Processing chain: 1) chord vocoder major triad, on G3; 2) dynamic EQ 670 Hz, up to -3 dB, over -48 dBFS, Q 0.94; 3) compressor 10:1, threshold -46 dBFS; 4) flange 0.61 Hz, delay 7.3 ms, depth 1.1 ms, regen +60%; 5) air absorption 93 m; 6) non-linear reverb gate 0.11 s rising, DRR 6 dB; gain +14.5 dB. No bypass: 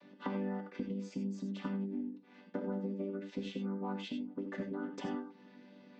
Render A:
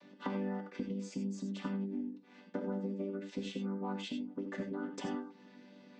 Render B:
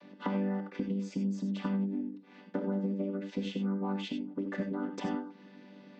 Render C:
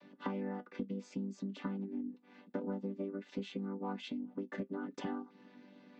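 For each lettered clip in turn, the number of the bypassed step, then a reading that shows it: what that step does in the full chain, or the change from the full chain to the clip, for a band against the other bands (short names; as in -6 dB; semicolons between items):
5, 4 kHz band +2.0 dB; 4, 125 Hz band +2.0 dB; 6, momentary loudness spread change -1 LU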